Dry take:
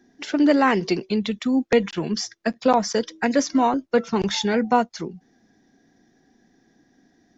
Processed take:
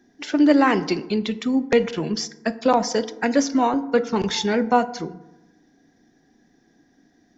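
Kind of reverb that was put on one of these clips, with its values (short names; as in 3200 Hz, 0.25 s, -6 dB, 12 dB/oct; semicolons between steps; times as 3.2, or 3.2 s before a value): FDN reverb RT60 0.98 s, low-frequency decay 1.2×, high-frequency decay 0.45×, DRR 12.5 dB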